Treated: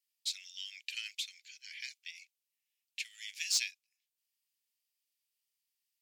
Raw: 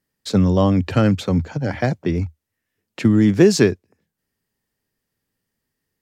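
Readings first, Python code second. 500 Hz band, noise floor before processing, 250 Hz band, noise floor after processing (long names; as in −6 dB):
below −40 dB, −80 dBFS, below −40 dB, below −85 dBFS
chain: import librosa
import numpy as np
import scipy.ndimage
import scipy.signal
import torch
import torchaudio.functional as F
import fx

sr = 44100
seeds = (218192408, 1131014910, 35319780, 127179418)

y = scipy.signal.sosfilt(scipy.signal.butter(8, 2300.0, 'highpass', fs=sr, output='sos'), x)
y = np.clip(y, -10.0 ** (-18.0 / 20.0), 10.0 ** (-18.0 / 20.0))
y = y * librosa.db_to_amplitude(-4.5)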